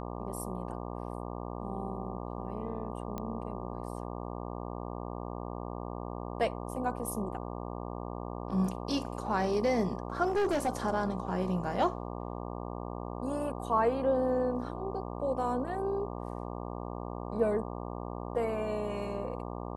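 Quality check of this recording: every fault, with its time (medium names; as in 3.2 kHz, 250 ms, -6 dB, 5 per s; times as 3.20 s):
buzz 60 Hz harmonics 20 -39 dBFS
3.18 s: pop -23 dBFS
10.27–10.69 s: clipped -25.5 dBFS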